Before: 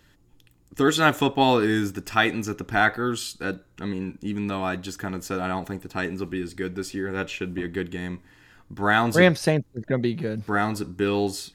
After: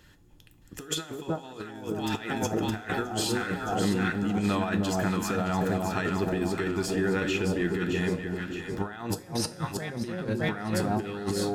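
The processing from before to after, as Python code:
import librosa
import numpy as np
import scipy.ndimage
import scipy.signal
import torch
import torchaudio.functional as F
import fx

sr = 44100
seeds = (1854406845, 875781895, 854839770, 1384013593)

p1 = x + fx.echo_alternate(x, sr, ms=308, hz=910.0, feedback_pct=70, wet_db=-4.0, dry=0)
p2 = fx.over_compress(p1, sr, threshold_db=-27.0, ratio=-0.5)
p3 = fx.rev_double_slope(p2, sr, seeds[0], early_s=0.3, late_s=3.2, knee_db=-18, drr_db=10.0)
y = p3 * librosa.db_to_amplitude(-2.5)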